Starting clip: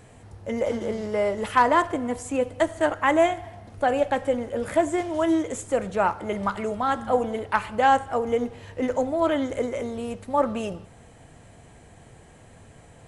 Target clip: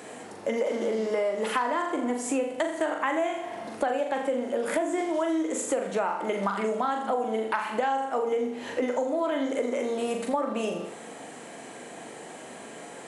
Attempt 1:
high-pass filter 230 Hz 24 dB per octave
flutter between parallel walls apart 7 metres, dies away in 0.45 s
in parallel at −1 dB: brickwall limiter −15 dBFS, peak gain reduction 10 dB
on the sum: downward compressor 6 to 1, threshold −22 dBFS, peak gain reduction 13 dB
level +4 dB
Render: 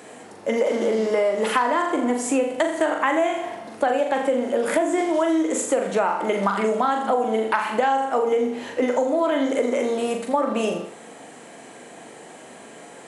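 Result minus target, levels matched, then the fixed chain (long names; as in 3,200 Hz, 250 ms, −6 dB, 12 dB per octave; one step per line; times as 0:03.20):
downward compressor: peak gain reduction −6 dB
high-pass filter 230 Hz 24 dB per octave
flutter between parallel walls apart 7 metres, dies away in 0.45 s
in parallel at −1 dB: brickwall limiter −15 dBFS, peak gain reduction 10 dB
on the sum: downward compressor 6 to 1, threshold −29.5 dBFS, peak gain reduction 19 dB
level +4 dB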